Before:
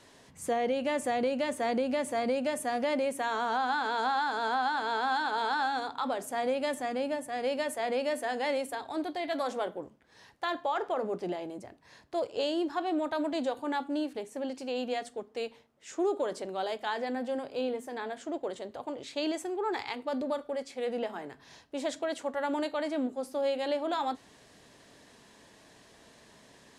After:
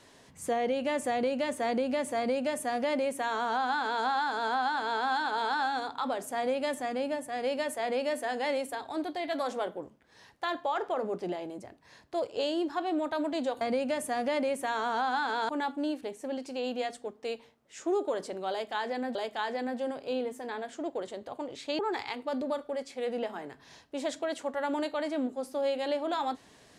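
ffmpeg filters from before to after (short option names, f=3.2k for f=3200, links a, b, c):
-filter_complex "[0:a]asplit=5[a][b][c][d][e];[a]atrim=end=13.612[f];[b]atrim=start=2.168:end=4.052[g];[c]atrim=start=13.608:end=17.272[h];[d]atrim=start=16.628:end=19.272[i];[e]atrim=start=19.588[j];[f][g]acrossfade=d=0.004:c1=hsin:c2=hsin[k];[k][h]acrossfade=d=0.004:c1=hsin:c2=hsin[l];[l][i]acrossfade=d=0.004:c1=hsin:c2=hsin[m];[m][j]acrossfade=d=0.004:c1=hsin:c2=hsin"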